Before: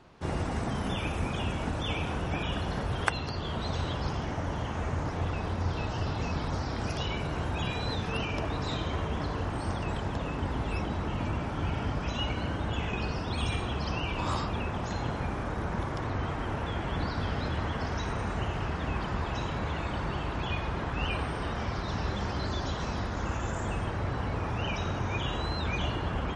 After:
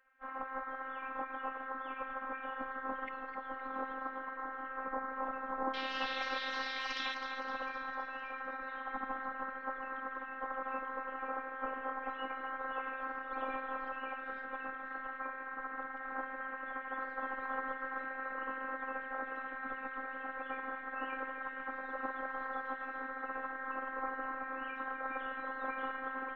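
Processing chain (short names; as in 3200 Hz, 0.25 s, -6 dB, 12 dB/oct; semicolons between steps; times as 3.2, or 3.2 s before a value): LPF 1300 Hz 24 dB/oct, from 5.74 s 4000 Hz, from 7.14 s 1400 Hz; spectral gate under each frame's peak -20 dB weak; robotiser 264 Hz; split-band echo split 940 Hz, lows 0.151 s, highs 0.257 s, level -9 dB; gain +8.5 dB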